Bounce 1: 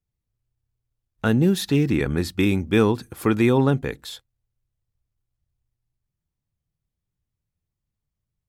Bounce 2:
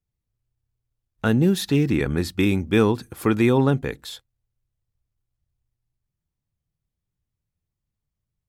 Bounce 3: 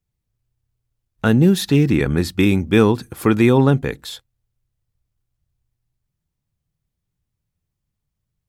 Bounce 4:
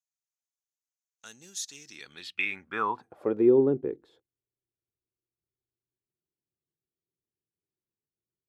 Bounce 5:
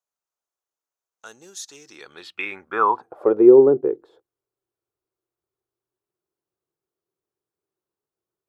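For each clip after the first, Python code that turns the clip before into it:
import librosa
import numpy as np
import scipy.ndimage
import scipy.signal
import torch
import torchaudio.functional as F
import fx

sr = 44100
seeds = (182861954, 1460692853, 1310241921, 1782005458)

y1 = x
y2 = fx.peak_eq(y1, sr, hz=160.0, db=2.0, octaves=0.77)
y2 = y2 * 10.0 ** (4.0 / 20.0)
y3 = fx.filter_sweep_bandpass(y2, sr, from_hz=6500.0, to_hz=370.0, start_s=1.83, end_s=3.5, q=4.8)
y4 = fx.band_shelf(y3, sr, hz=700.0, db=11.0, octaves=2.4)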